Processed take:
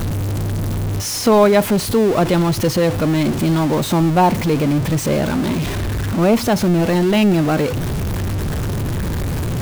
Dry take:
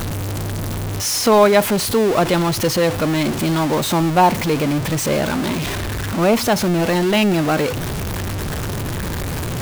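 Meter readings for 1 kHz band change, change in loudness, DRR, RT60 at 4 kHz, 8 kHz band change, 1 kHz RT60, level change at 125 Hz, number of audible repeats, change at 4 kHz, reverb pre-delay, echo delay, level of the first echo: -1.5 dB, +1.0 dB, none, none, -3.0 dB, none, +3.5 dB, none, -3.0 dB, none, none, none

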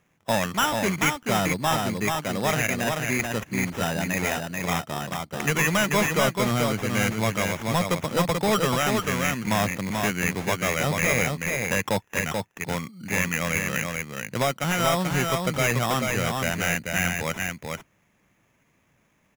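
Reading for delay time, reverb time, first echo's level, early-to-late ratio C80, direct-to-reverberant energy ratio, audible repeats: 0.436 s, none, -4.0 dB, none, none, 1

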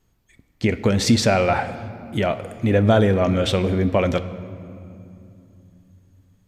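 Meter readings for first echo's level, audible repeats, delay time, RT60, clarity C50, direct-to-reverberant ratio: none, none, none, 2.8 s, 13.0 dB, 12.0 dB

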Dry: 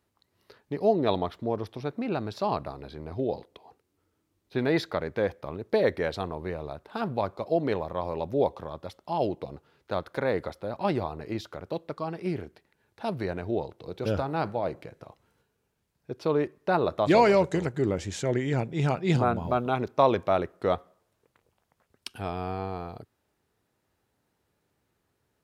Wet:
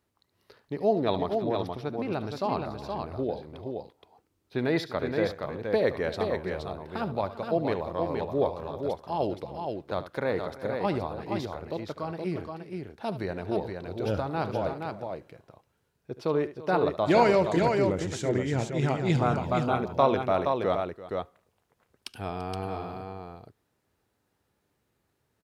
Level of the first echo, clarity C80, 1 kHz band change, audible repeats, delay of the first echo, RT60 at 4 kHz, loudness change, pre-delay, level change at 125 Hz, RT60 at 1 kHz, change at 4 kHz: -14.0 dB, none, 0.0 dB, 3, 73 ms, none, -0.5 dB, none, 0.0 dB, none, 0.0 dB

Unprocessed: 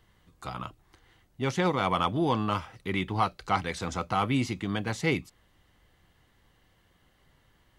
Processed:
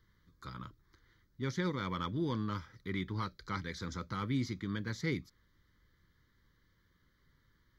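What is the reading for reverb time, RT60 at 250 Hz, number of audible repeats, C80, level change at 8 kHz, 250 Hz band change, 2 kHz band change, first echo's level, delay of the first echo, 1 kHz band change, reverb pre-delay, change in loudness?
none, none, none, none, -9.5 dB, -6.5 dB, -9.0 dB, none, none, -13.5 dB, none, -8.5 dB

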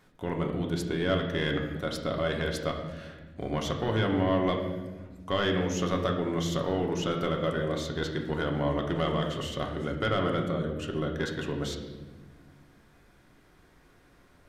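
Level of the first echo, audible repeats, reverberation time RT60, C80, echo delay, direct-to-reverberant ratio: none, none, 1.2 s, 8.0 dB, none, 1.0 dB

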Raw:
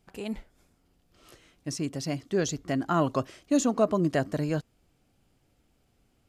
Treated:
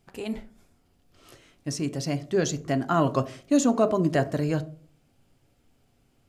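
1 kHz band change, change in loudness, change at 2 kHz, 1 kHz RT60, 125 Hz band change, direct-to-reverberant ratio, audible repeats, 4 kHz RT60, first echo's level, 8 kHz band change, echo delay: +3.0 dB, +2.5 dB, +2.5 dB, 0.40 s, +3.5 dB, 10.5 dB, none, 0.25 s, none, +2.0 dB, none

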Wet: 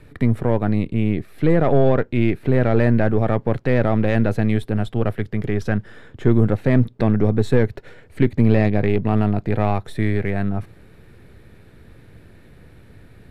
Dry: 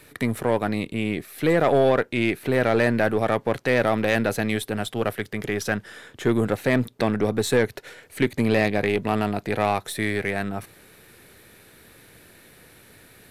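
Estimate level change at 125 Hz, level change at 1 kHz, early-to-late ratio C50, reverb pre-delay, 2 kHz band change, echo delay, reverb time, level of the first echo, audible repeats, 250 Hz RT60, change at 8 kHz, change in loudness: +10.5 dB, -1.0 dB, none, none, -4.0 dB, none, none, none, none, none, under -10 dB, +3.5 dB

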